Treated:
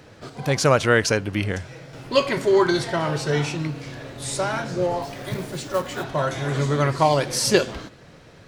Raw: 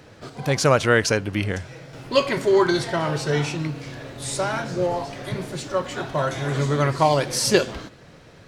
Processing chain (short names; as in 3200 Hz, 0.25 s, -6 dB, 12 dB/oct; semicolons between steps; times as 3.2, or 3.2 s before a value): 5.02–6.04 short-mantissa float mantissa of 2-bit